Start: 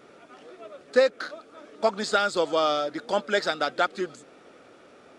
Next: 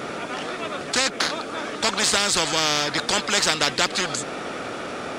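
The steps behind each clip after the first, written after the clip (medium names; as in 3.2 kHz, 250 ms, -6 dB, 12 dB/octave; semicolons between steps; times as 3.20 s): spectrum-flattening compressor 4:1; trim +6.5 dB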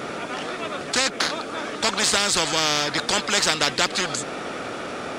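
no audible change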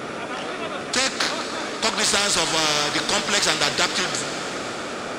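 plate-style reverb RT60 5 s, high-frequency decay 1×, DRR 6.5 dB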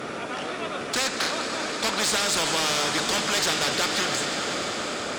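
echo with a slow build-up 99 ms, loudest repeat 5, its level -16.5 dB; saturation -18.5 dBFS, distortion -11 dB; Chebyshev shaper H 3 -23 dB, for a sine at -18.5 dBFS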